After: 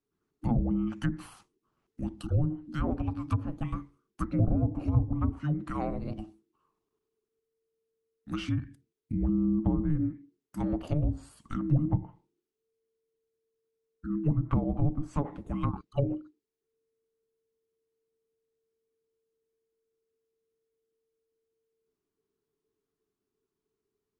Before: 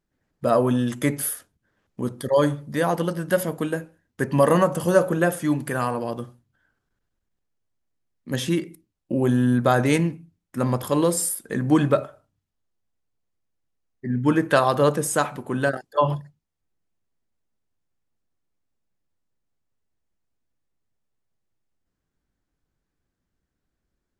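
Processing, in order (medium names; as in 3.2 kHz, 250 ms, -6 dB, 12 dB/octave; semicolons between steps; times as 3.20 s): frequency shift -450 Hz; low-pass that closes with the level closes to 410 Hz, closed at -15 dBFS; trim -7 dB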